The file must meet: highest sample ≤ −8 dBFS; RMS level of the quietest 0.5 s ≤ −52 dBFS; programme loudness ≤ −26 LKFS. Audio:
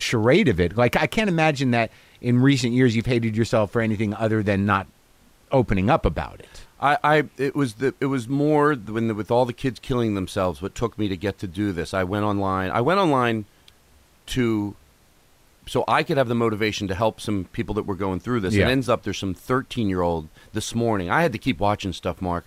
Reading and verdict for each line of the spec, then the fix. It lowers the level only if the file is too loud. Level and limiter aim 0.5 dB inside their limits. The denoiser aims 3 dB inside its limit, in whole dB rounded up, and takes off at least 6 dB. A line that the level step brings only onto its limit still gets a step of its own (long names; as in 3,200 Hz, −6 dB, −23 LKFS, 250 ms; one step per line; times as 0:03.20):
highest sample −7.0 dBFS: out of spec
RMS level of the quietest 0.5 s −56 dBFS: in spec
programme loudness −22.5 LKFS: out of spec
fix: level −4 dB